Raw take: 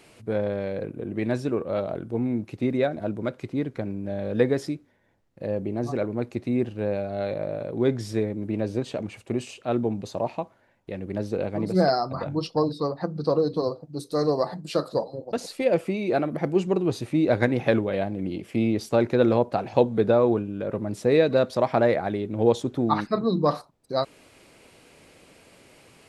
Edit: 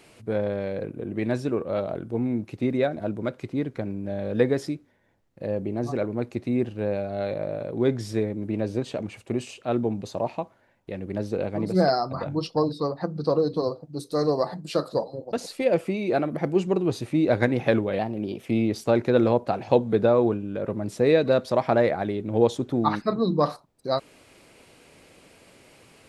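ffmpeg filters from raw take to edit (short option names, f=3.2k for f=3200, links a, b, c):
-filter_complex "[0:a]asplit=3[a][b][c];[a]atrim=end=17.994[d];[b]atrim=start=17.99:end=18.51,asetpts=PTS-STARTPTS,asetrate=48951,aresample=44100,atrim=end_sample=20659,asetpts=PTS-STARTPTS[e];[c]atrim=start=18.506[f];[d][e]acrossfade=d=0.004:c1=hsin:c2=hsin[g];[g][f]acrossfade=d=0.004:c1=hsin:c2=hsin"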